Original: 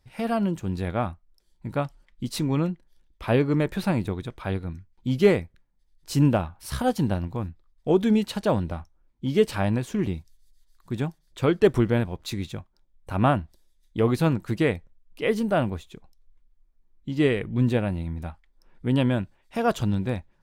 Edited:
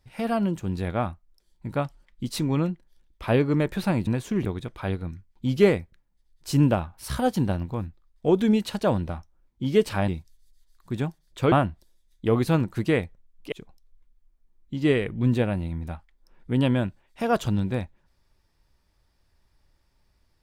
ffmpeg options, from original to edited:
-filter_complex "[0:a]asplit=6[s0][s1][s2][s3][s4][s5];[s0]atrim=end=4.072[s6];[s1]atrim=start=9.698:end=10.082[s7];[s2]atrim=start=4.068:end=9.702[s8];[s3]atrim=start=10.078:end=11.522[s9];[s4]atrim=start=13.238:end=15.242[s10];[s5]atrim=start=15.868[s11];[s6][s7]acrossfade=d=0.004:c1=hsin:c2=hsin[s12];[s12][s8]acrossfade=d=0.004:c1=hsin:c2=hsin[s13];[s13][s9]acrossfade=d=0.004:c1=hsin:c2=hsin[s14];[s14][s10]acrossfade=d=0.004:c1=hsin:c2=hsin[s15];[s15][s11]acrossfade=d=0.004:c1=hsin:c2=hsin"

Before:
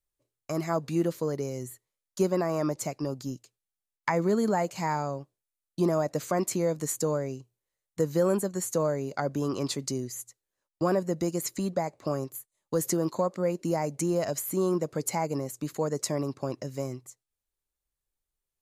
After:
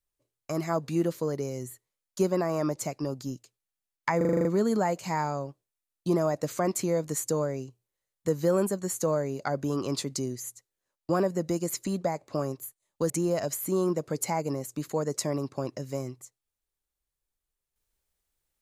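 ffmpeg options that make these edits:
-filter_complex "[0:a]asplit=9[s0][s1][s2][s3][s4][s5][s6][s7][s8];[s0]atrim=end=4.212[s9];[s1]atrim=start=4.168:end=4.212[s10];[s2]atrim=start=4.168:end=4.212[s11];[s3]atrim=start=4.168:end=4.212[s12];[s4]atrim=start=4.168:end=4.212[s13];[s5]atrim=start=4.168:end=4.212[s14];[s6]atrim=start=4.168:end=4.212[s15];[s7]atrim=start=4.168:end=12.822[s16];[s8]atrim=start=13.948[s17];[s9][s10]acrossfade=d=0.004:c1=hsin:c2=hsin[s18];[s18][s11]acrossfade=d=0.004:c1=hsin:c2=hsin[s19];[s19][s12]acrossfade=d=0.004:c1=hsin:c2=hsin[s20];[s20][s13]acrossfade=d=0.004:c1=hsin:c2=hsin[s21];[s21][s14]acrossfade=d=0.004:c1=hsin:c2=hsin[s22];[s22][s15]acrossfade=d=0.004:c1=hsin:c2=hsin[s23];[s23][s16]acrossfade=d=0.004:c1=hsin:c2=hsin[s24];[s24][s17]acrossfade=d=0.004:c1=hsin:c2=hsin"

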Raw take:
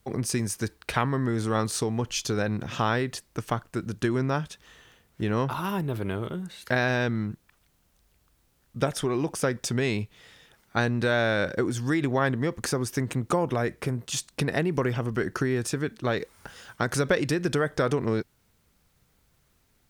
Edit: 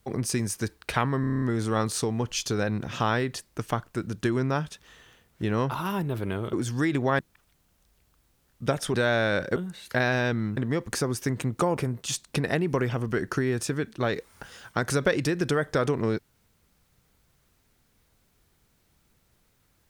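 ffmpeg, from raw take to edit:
-filter_complex "[0:a]asplit=14[s0][s1][s2][s3][s4][s5][s6][s7][s8][s9][s10][s11][s12][s13];[s0]atrim=end=1.242[s14];[s1]atrim=start=1.208:end=1.242[s15];[s2]atrim=start=1.208:end=1.242[s16];[s3]atrim=start=1.208:end=1.242[s17];[s4]atrim=start=1.208:end=1.242[s18];[s5]atrim=start=1.208:end=1.242[s19];[s6]atrim=start=1.208:end=1.242[s20];[s7]atrim=start=1.208:end=6.322[s21];[s8]atrim=start=11.618:end=12.282[s22];[s9]atrim=start=7.328:end=9.082[s23];[s10]atrim=start=10.998:end=11.622[s24];[s11]atrim=start=6.318:end=7.332[s25];[s12]atrim=start=12.278:end=13.482[s26];[s13]atrim=start=13.808[s27];[s14][s15]acrossfade=d=0.004:c1=hsin:c2=hsin[s28];[s28][s16]acrossfade=d=0.004:c1=hsin:c2=hsin[s29];[s29][s17]acrossfade=d=0.004:c1=hsin:c2=hsin[s30];[s30][s18]acrossfade=d=0.004:c1=hsin:c2=hsin[s31];[s31][s19]acrossfade=d=0.004:c1=hsin:c2=hsin[s32];[s32][s20]acrossfade=d=0.004:c1=hsin:c2=hsin[s33];[s33][s21]acrossfade=d=0.004:c1=hsin:c2=hsin[s34];[s34][s22]acrossfade=d=0.004:c1=hsin:c2=hsin[s35];[s35][s23]acrossfade=d=0.004:c1=hsin:c2=hsin[s36];[s36][s24]acrossfade=d=0.004:c1=hsin:c2=hsin[s37];[s37][s25]acrossfade=d=0.004:c1=hsin:c2=hsin[s38];[s38][s26]acrossfade=d=0.004:c1=hsin:c2=hsin[s39];[s39][s27]acrossfade=d=0.004:c1=hsin:c2=hsin"

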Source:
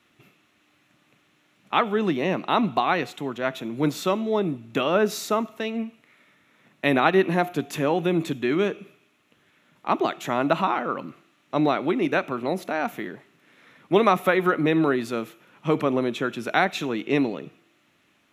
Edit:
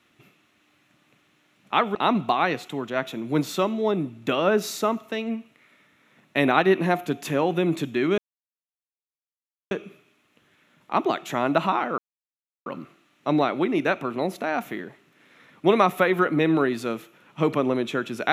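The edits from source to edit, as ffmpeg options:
-filter_complex "[0:a]asplit=4[s0][s1][s2][s3];[s0]atrim=end=1.952[s4];[s1]atrim=start=2.428:end=8.66,asetpts=PTS-STARTPTS,afade=t=out:st=6.228:d=0.004:c=hsin,apad=pad_dur=1.53[s5];[s2]atrim=start=8.66:end=10.93,asetpts=PTS-STARTPTS,afade=t=in:d=0.004:c=hsin,afade=t=out:st=2.266:d=0.004:c=hsin,apad=pad_dur=0.68[s6];[s3]atrim=start=10.93,asetpts=PTS-STARTPTS,afade=t=in:d=0.004:c=hsin[s7];[s5][s6][s7]concat=n=3:v=0:a=1[s8];[s4][s8]acrossfade=d=0.004:c1=hsin:c2=hsin"

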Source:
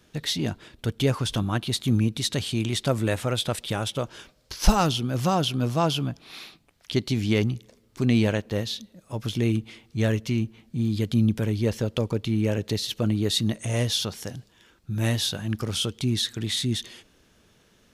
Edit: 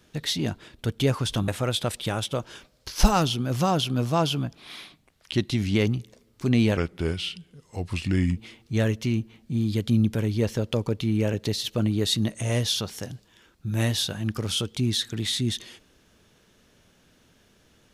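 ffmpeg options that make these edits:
-filter_complex "[0:a]asplit=6[s0][s1][s2][s3][s4][s5];[s0]atrim=end=1.482[s6];[s1]atrim=start=3.118:end=6.264[s7];[s2]atrim=start=6.26:end=7.31,asetpts=PTS-STARTPTS,asetrate=41013,aresample=44100,atrim=end_sample=49790,asetpts=PTS-STARTPTS[s8];[s3]atrim=start=7.306:end=8.334[s9];[s4]atrim=start=8.33:end=9.61,asetpts=PTS-STARTPTS,asetrate=35280,aresample=44100[s10];[s5]atrim=start=9.606[s11];[s6][s7]acrossfade=d=0.004:c1=hsin:c2=hsin[s12];[s12][s8]acrossfade=d=0.004:c1=hsin:c2=hsin[s13];[s13][s9]acrossfade=d=0.004:c1=hsin:c2=hsin[s14];[s14][s10]acrossfade=d=0.004:c1=hsin:c2=hsin[s15];[s15][s11]acrossfade=d=0.004:c1=hsin:c2=hsin"

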